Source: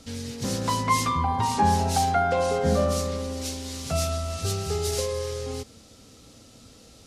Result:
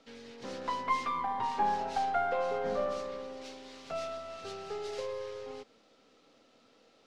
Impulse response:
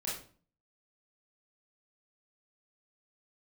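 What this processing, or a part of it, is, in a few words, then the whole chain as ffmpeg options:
crystal radio: -af "highpass=380,lowpass=2.9k,aeval=exprs='if(lt(val(0),0),0.708*val(0),val(0))':c=same,volume=-5.5dB"

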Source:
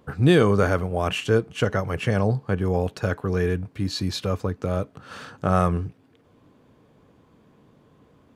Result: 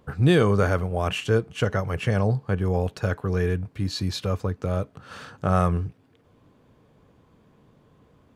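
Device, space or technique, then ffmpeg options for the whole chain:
low shelf boost with a cut just above: -af "lowshelf=f=85:g=6,equalizer=f=280:t=o:w=0.77:g=-2.5,volume=-1.5dB"

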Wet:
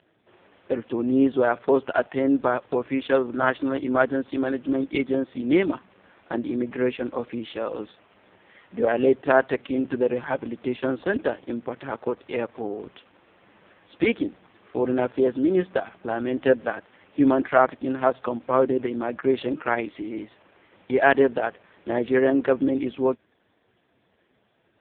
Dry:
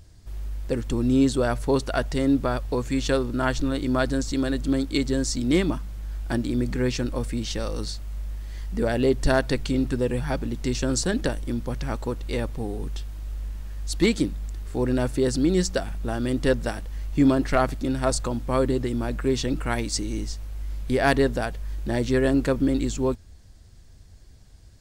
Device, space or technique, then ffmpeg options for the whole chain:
telephone: -filter_complex "[0:a]asplit=3[a][b][c];[a]afade=t=out:st=15.9:d=0.02[d];[b]lowpass=8.1k,afade=t=in:st=15.9:d=0.02,afade=t=out:st=17.08:d=0.02[e];[c]afade=t=in:st=17.08:d=0.02[f];[d][e][f]amix=inputs=3:normalize=0,highpass=350,lowpass=3.1k,volume=5.5dB" -ar 8000 -c:a libopencore_amrnb -b:a 4750

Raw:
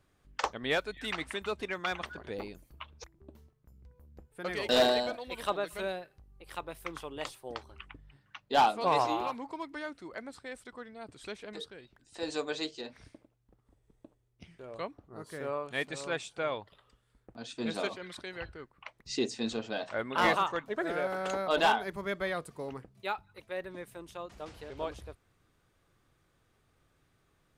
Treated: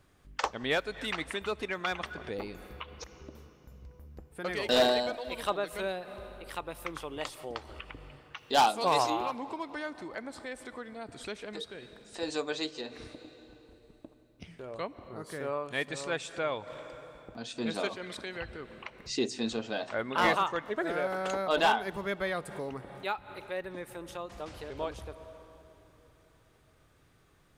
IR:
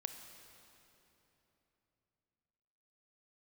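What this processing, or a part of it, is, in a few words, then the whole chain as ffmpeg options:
ducked reverb: -filter_complex "[0:a]asplit=3[a][b][c];[1:a]atrim=start_sample=2205[d];[b][d]afir=irnorm=-1:irlink=0[e];[c]apad=whole_len=1216131[f];[e][f]sidechaincompress=threshold=-49dB:ratio=8:attack=16:release=135,volume=2.5dB[g];[a][g]amix=inputs=2:normalize=0,asettb=1/sr,asplit=3[h][i][j];[h]atrim=end=8.374[k];[i]atrim=start=8.37:end=9.1,asetpts=PTS-STARTPTS,afade=t=in:d=0.004:c=qsin,afade=t=out:st=0.726:d=0.004:c=qsin,bass=f=250:g=-1,treble=f=4k:g=10[l];[j]atrim=start=9.096[m];[k][l]acrossfade=d=0.004:c1=hsin:c2=qsin[n];[n][m]acrossfade=d=0.004:c1=qsin:c2=hsin"

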